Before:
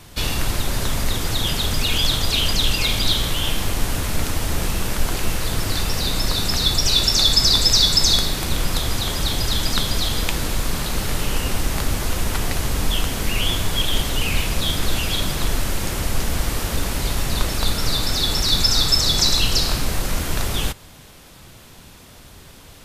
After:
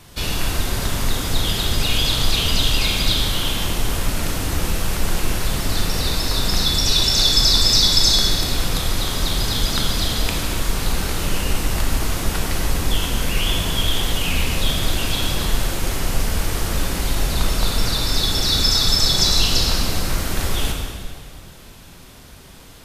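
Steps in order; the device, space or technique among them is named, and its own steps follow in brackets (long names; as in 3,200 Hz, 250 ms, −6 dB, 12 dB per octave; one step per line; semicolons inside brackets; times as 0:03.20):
stairwell (convolution reverb RT60 2.0 s, pre-delay 24 ms, DRR 0.5 dB)
level −2 dB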